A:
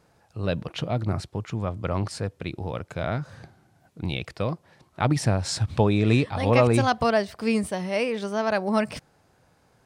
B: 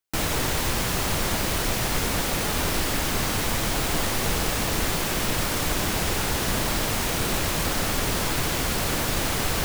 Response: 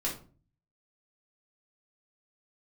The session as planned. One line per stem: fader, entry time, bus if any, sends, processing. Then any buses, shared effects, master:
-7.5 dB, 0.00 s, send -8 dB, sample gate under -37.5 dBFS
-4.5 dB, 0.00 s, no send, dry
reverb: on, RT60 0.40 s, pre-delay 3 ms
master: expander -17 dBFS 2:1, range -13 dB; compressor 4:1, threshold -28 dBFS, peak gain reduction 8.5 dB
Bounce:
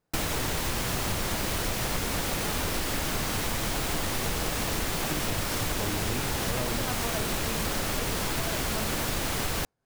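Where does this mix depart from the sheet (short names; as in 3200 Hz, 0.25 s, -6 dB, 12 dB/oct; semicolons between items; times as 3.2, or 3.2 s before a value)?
stem A: missing sample gate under -37.5 dBFS; stem B -4.5 dB -> +6.5 dB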